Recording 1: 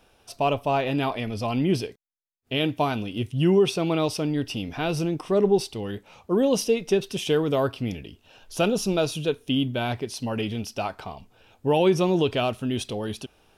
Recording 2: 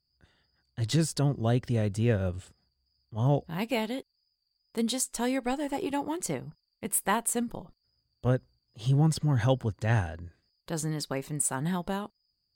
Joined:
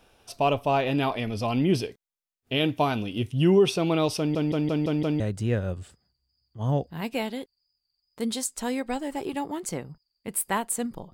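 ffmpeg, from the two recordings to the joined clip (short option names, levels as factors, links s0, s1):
-filter_complex "[0:a]apad=whole_dur=11.13,atrim=end=11.13,asplit=6[s0][s1][s2][s3][s4][s5];[s0]atrim=end=4.352[s6];[s1]atrim=start=4.178:end=4.352[s7];[s2]atrim=start=4.178:end=4.352[s8];[s3]atrim=start=4.178:end=4.352[s9];[s4]atrim=start=4.178:end=4.352[s10];[s5]atrim=start=4.178:end=4.352[s11];[1:a]atrim=start=1.768:end=7.7[s12];[s6][s7]acrossfade=d=0.004:c1=hsin:c2=hsin[s13];[s13][s8]acrossfade=d=0.004:c1=hsin:c2=hsin[s14];[s14][s9]acrossfade=d=0.004:c1=hsin:c2=hsin[s15];[s15][s10]acrossfade=d=0.004:c1=hsin:c2=hsin[s16];[s16][s11]acrossfade=d=0.004:c1=hsin:c2=hsin[s17];[s17][s12]acrossfade=d=0.004:c1=hsin:c2=hsin"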